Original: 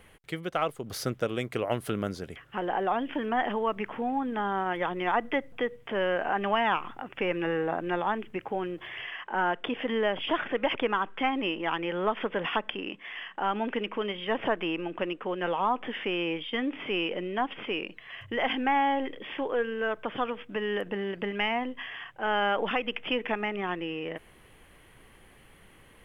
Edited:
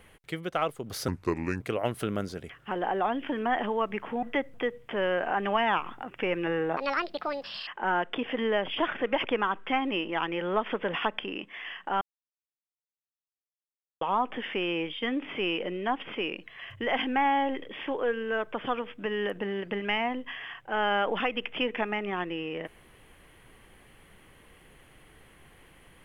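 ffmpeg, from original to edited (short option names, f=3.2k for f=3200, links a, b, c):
-filter_complex "[0:a]asplit=8[a][b][c][d][e][f][g][h];[a]atrim=end=1.084[i];[b]atrim=start=1.08:end=1.47,asetpts=PTS-STARTPTS,asetrate=32634,aresample=44100[j];[c]atrim=start=1.466:end=4.092[k];[d]atrim=start=5.208:end=7.754[l];[e]atrim=start=7.75:end=9.18,asetpts=PTS-STARTPTS,asetrate=69678,aresample=44100,atrim=end_sample=39913,asetpts=PTS-STARTPTS[m];[f]atrim=start=9.176:end=13.52,asetpts=PTS-STARTPTS,afade=t=out:st=4.34:d=0.004:c=hsin[n];[g]atrim=start=13.52:end=15.52,asetpts=PTS-STARTPTS,volume=0[o];[h]atrim=start=15.52,asetpts=PTS-STARTPTS,afade=t=in:d=0.004:c=hsin[p];[i][j]acrossfade=d=0.004:c1=hsin:c2=hsin[q];[q][k]acrossfade=d=0.004:c1=hsin:c2=hsin[r];[r][l]acrossfade=d=0.004:c1=hsin:c2=hsin[s];[s][m]acrossfade=d=0.004:c1=hsin:c2=hsin[t];[n][o][p]concat=n=3:v=0:a=1[u];[t][u]acrossfade=d=0.004:c1=hsin:c2=hsin"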